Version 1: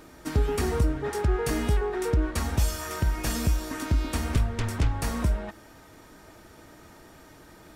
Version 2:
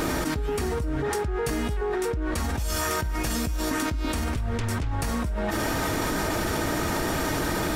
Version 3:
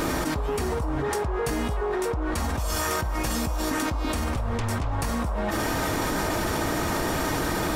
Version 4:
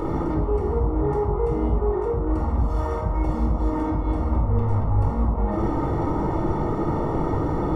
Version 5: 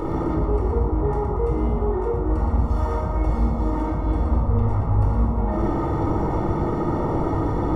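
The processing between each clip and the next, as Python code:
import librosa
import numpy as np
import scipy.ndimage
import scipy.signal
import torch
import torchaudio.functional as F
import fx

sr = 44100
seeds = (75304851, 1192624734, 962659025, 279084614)

y1 = fx.env_flatten(x, sr, amount_pct=100)
y1 = y1 * 10.0 ** (-8.0 / 20.0)
y2 = fx.dmg_noise_band(y1, sr, seeds[0], low_hz=470.0, high_hz=1200.0, level_db=-38.0)
y3 = scipy.signal.savgol_filter(y2, 65, 4, mode='constant')
y3 = fx.room_shoebox(y3, sr, seeds[1], volume_m3=2100.0, walls='furnished', distance_m=4.2)
y3 = y3 * 10.0 ** (-2.5 / 20.0)
y4 = fx.echo_feedback(y3, sr, ms=117, feedback_pct=52, wet_db=-7)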